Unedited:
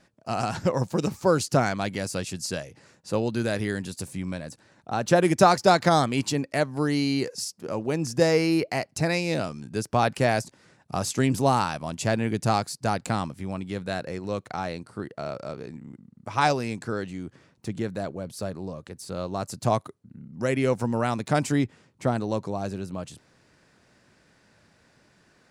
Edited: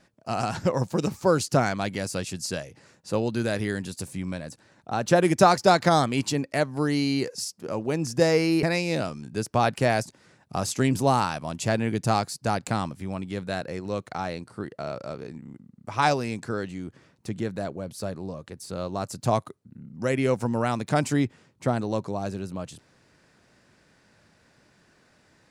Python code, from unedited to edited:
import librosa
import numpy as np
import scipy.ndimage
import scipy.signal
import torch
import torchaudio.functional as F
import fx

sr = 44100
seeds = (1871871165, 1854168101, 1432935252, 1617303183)

y = fx.edit(x, sr, fx.cut(start_s=8.63, length_s=0.39), tone=tone)